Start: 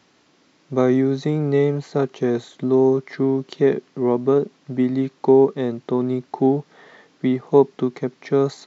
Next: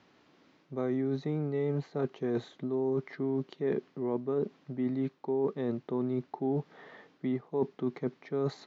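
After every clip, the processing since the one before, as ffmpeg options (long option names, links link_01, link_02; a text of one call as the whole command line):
ffmpeg -i in.wav -af "lowpass=4900,highshelf=frequency=3700:gain=-6,areverse,acompressor=threshold=-24dB:ratio=6,areverse,volume=-4dB" out.wav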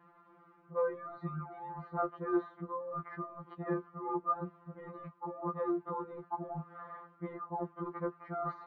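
ffmpeg -i in.wav -af "lowpass=frequency=1200:width_type=q:width=6.2,afftfilt=real='re*2.83*eq(mod(b,8),0)':imag='im*2.83*eq(mod(b,8),0)':win_size=2048:overlap=0.75,volume=1dB" out.wav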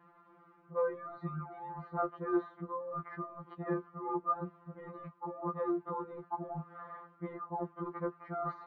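ffmpeg -i in.wav -af anull out.wav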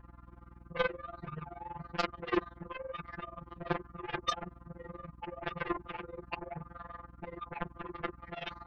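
ffmpeg -i in.wav -af "aeval=exprs='val(0)+0.002*(sin(2*PI*60*n/s)+sin(2*PI*2*60*n/s)/2+sin(2*PI*3*60*n/s)/3+sin(2*PI*4*60*n/s)/4+sin(2*PI*5*60*n/s)/5)':channel_layout=same,aeval=exprs='0.1*(cos(1*acos(clip(val(0)/0.1,-1,1)))-cos(1*PI/2))+0.0141*(cos(5*acos(clip(val(0)/0.1,-1,1)))-cos(5*PI/2))+0.0447*(cos(7*acos(clip(val(0)/0.1,-1,1)))-cos(7*PI/2))':channel_layout=same,tremolo=f=21:d=0.889,volume=2dB" out.wav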